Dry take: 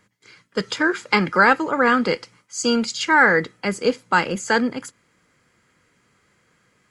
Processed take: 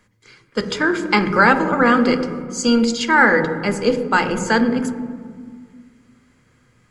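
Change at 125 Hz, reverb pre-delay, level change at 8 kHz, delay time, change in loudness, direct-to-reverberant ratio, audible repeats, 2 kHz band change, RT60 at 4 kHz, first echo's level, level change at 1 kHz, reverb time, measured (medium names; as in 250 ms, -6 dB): +5.0 dB, 3 ms, +1.0 dB, no echo, +2.5 dB, 8.0 dB, no echo, +1.0 dB, 1.0 s, no echo, +2.0 dB, 1.8 s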